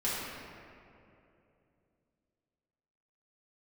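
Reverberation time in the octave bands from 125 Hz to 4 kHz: 3.5, 3.3, 3.1, 2.4, 2.2, 1.4 s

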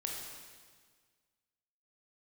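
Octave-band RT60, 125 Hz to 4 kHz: 1.8, 1.8, 1.6, 1.6, 1.6, 1.6 s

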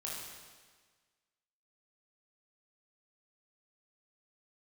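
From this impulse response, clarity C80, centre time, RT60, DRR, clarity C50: 2.0 dB, 95 ms, 1.5 s, -5.5 dB, -1.0 dB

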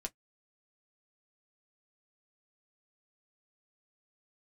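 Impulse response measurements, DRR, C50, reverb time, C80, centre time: 2.5 dB, 36.5 dB, 0.10 s, 55.0 dB, 4 ms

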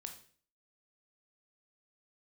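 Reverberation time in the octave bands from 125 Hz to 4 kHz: 0.50, 0.50, 0.50, 0.45, 0.45, 0.45 s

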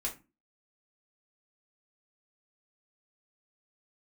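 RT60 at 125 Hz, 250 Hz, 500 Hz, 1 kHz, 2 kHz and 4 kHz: 0.40, 0.45, 0.30, 0.30, 0.25, 0.20 s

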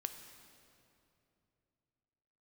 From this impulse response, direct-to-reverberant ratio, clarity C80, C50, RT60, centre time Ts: 7.0 dB, 9.0 dB, 8.5 dB, 2.8 s, 31 ms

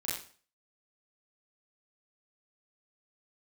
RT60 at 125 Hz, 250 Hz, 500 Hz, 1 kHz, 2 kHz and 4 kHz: 0.45, 0.45, 0.45, 0.40, 0.40, 0.40 s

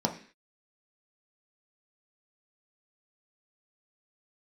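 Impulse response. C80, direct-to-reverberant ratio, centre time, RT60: 15.5 dB, 1.5 dB, 13 ms, 0.45 s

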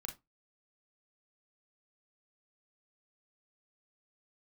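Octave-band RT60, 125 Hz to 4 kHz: 0.25, 0.25, 0.20, 0.25, 0.15, 0.15 s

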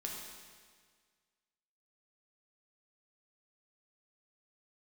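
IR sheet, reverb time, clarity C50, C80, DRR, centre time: 1.7 s, 1.5 dB, 3.0 dB, -2.0 dB, 80 ms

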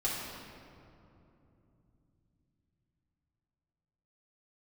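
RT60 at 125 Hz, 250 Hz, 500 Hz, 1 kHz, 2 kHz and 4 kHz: 5.6, 4.7, 3.3, 2.6, 2.0, 1.4 s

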